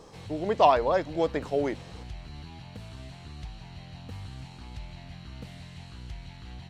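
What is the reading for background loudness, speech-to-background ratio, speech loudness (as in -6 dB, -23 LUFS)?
-44.0 LUFS, 18.0 dB, -26.0 LUFS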